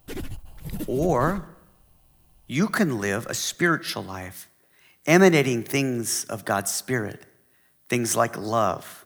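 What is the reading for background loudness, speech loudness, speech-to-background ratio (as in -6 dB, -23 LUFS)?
-37.0 LUFS, -23.5 LUFS, 13.5 dB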